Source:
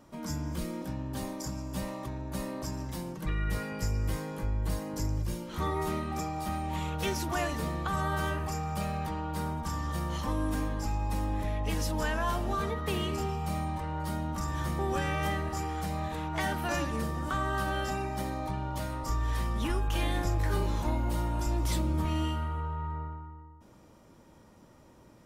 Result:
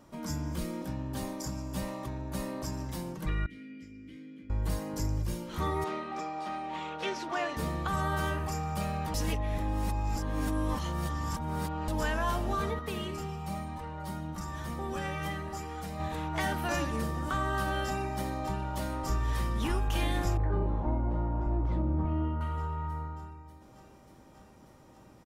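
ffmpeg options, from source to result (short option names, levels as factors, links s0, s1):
-filter_complex "[0:a]asettb=1/sr,asplit=3[s0][s1][s2];[s0]atrim=end=3.464[s3];[s1]atrim=start=3.46:end=4.5,asetpts=PTS-STARTPTS,afade=t=in:d=0.004:c=qsin,afade=t=out:st=1.036:d=0.004:c=qsin,asplit=3[s4][s5][s6];[s4]bandpass=f=270:t=q:w=8,volume=1[s7];[s5]bandpass=f=2290:t=q:w=8,volume=0.501[s8];[s6]bandpass=f=3010:t=q:w=8,volume=0.355[s9];[s7][s8][s9]amix=inputs=3:normalize=0[s10];[s2]atrim=start=4.496[s11];[s3][s10]acrossfade=d=0.004:c1=hsin:c2=qsin[s12];[s12][s11]acrossfade=d=0.004:c1=qsin:c2=hsin,asettb=1/sr,asplit=3[s13][s14][s15];[s13]atrim=end=5.844[s16];[s14]atrim=start=5.84:end=7.57,asetpts=PTS-STARTPTS,afade=t=in:d=0.004:c=qsin,afade=t=out:st=1.726:d=0.004:c=qsin,highpass=330,lowpass=4200[s17];[s15]atrim=start=7.566[s18];[s16][s17]acrossfade=d=0.004:c1=hsin:c2=qsin[s19];[s19][s18]acrossfade=d=0.004:c1=qsin:c2=hsin,asettb=1/sr,asplit=3[s20][s21][s22];[s20]atrim=end=12.794[s23];[s21]atrim=start=12.79:end=16,asetpts=PTS-STARTPTS,afade=t=in:d=0.004:c=qsin,afade=t=out:st=3.206:d=0.004:c=qsin,flanger=delay=4:depth=2.1:regen=48:speed=1:shape=triangular[s24];[s22]atrim=start=15.996[s25];[s23][s24]acrossfade=d=0.004:c1=hsin:c2=qsin[s26];[s26][s25]acrossfade=d=0.004:c1=qsin:c2=hsin,asplit=2[s27][s28];[s28]afade=t=in:st=17.85:d=0.01,afade=t=out:st=18.58:d=0.01,aecho=0:1:590|1180|1770|2360|2950|3540|4130|4720|5310|5900|6490|7080:0.334965|0.267972|0.214378|0.171502|0.137202|0.109761|0.0878092|0.0702473|0.0561979|0.0449583|0.0359666|0.0287733[s29];[s27][s29]amix=inputs=2:normalize=0,asettb=1/sr,asplit=3[s30][s31][s32];[s30]atrim=end=20.374[s33];[s31]atrim=start=20.37:end=22.41,asetpts=PTS-STARTPTS,afade=t=in:d=0.004:c=qsin,afade=t=out:st=2.036:d=0.004:c=qsin,lowpass=1000[s34];[s32]atrim=start=22.406[s35];[s33][s34]acrossfade=d=0.004:c1=hsin:c2=qsin[s36];[s36][s35]acrossfade=d=0.004:c1=qsin:c2=hsin,asplit=3[s37][s38][s39];[s37]atrim=end=9.142[s40];[s38]atrim=start=9.138:end=11.882,asetpts=PTS-STARTPTS,areverse[s41];[s39]atrim=start=11.878[s42];[s40][s41]acrossfade=d=0.004:c1=hsin:c2=hsin[s43];[s43][s42]acrossfade=d=0.004:c1=hsin:c2=hsin"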